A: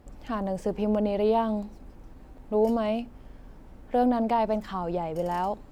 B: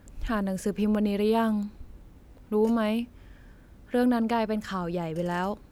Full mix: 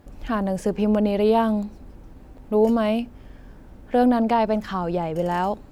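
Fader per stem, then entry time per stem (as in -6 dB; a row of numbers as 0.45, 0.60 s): +1.5, -3.0 dB; 0.00, 0.00 s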